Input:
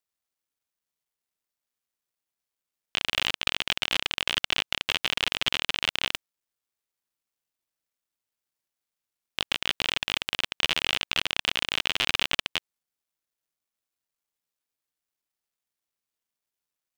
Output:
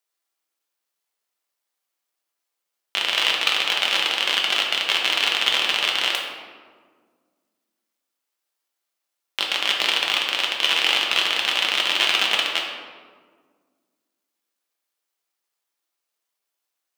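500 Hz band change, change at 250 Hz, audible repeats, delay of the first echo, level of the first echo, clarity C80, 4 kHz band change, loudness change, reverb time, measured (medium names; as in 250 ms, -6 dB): +7.0 dB, +2.0 dB, no echo, no echo, no echo, 4.0 dB, +7.5 dB, +7.5 dB, 1.7 s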